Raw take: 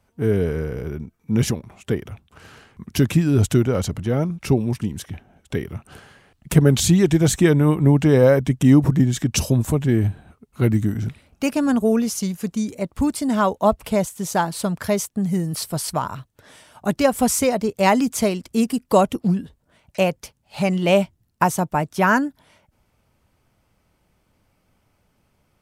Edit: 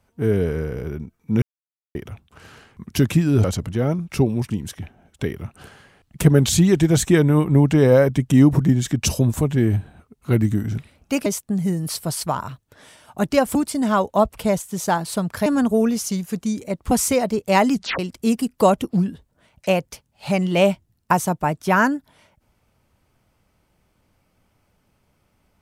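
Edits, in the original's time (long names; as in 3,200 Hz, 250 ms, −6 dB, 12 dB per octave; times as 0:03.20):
0:01.42–0:01.95: silence
0:03.44–0:03.75: remove
0:11.57–0:13.02: swap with 0:14.93–0:17.22
0:18.05: tape stop 0.25 s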